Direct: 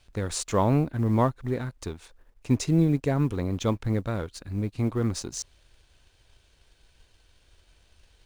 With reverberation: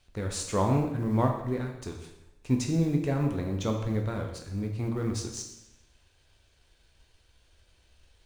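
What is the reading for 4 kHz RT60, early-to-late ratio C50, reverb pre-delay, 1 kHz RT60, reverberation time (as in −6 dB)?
0.85 s, 6.0 dB, 6 ms, 0.90 s, 0.90 s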